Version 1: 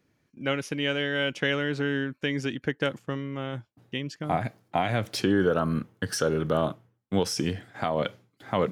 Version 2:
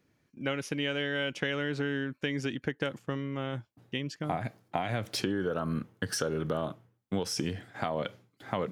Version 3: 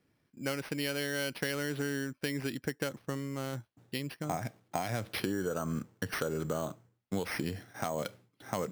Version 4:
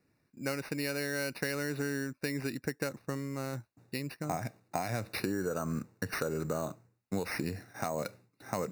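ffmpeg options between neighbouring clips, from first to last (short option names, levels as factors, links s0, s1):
-af "acompressor=threshold=0.0501:ratio=6,volume=0.891"
-af "acrusher=samples=6:mix=1:aa=0.000001,volume=0.75"
-af "asuperstop=centerf=3200:order=12:qfactor=4.7"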